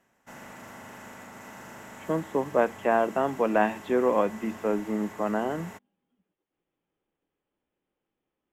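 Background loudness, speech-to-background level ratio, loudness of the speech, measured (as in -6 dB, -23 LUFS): -44.5 LUFS, 17.5 dB, -27.0 LUFS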